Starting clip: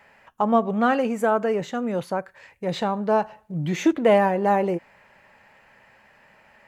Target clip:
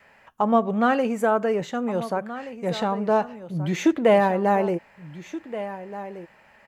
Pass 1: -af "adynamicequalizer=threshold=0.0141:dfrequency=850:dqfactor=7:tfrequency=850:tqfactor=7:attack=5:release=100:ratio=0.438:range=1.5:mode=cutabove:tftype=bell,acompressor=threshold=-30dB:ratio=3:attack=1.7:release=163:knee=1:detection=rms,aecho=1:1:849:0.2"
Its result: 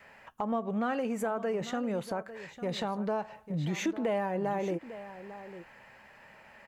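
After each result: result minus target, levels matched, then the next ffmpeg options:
compressor: peak gain reduction +14.5 dB; echo 0.627 s early
-af "adynamicequalizer=threshold=0.0141:dfrequency=850:dqfactor=7:tfrequency=850:tqfactor=7:attack=5:release=100:ratio=0.438:range=1.5:mode=cutabove:tftype=bell,aecho=1:1:849:0.2"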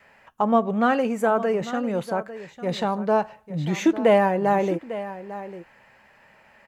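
echo 0.627 s early
-af "adynamicequalizer=threshold=0.0141:dfrequency=850:dqfactor=7:tfrequency=850:tqfactor=7:attack=5:release=100:ratio=0.438:range=1.5:mode=cutabove:tftype=bell,aecho=1:1:1476:0.2"

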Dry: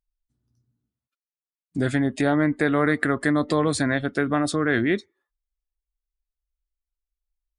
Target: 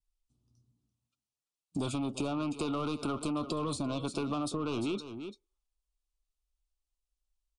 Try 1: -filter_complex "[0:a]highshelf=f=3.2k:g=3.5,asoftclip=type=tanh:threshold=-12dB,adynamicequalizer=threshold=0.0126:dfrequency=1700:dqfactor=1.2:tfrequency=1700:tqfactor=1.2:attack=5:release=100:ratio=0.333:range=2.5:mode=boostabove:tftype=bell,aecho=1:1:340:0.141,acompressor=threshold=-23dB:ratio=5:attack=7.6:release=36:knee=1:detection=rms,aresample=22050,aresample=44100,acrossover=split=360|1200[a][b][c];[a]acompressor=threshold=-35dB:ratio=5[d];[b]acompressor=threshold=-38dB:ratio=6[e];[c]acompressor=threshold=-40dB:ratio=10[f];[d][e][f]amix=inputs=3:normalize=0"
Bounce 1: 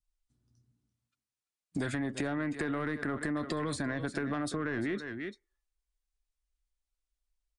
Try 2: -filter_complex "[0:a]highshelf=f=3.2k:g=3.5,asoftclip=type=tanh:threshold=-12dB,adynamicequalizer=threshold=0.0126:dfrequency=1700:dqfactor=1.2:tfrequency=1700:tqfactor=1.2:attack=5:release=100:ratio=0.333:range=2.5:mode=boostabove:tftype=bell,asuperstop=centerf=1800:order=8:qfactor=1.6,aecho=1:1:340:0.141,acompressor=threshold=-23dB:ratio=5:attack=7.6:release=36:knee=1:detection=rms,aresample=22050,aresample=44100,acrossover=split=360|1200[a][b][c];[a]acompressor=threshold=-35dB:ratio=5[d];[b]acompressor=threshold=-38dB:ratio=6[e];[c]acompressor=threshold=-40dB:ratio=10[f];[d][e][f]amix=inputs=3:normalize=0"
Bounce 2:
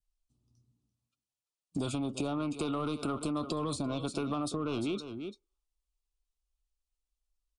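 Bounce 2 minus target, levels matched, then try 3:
soft clip: distortion -7 dB
-filter_complex "[0:a]highshelf=f=3.2k:g=3.5,asoftclip=type=tanh:threshold=-18dB,adynamicequalizer=threshold=0.0126:dfrequency=1700:dqfactor=1.2:tfrequency=1700:tqfactor=1.2:attack=5:release=100:ratio=0.333:range=2.5:mode=boostabove:tftype=bell,asuperstop=centerf=1800:order=8:qfactor=1.6,aecho=1:1:340:0.141,acompressor=threshold=-23dB:ratio=5:attack=7.6:release=36:knee=1:detection=rms,aresample=22050,aresample=44100,acrossover=split=360|1200[a][b][c];[a]acompressor=threshold=-35dB:ratio=5[d];[b]acompressor=threshold=-38dB:ratio=6[e];[c]acompressor=threshold=-40dB:ratio=10[f];[d][e][f]amix=inputs=3:normalize=0"

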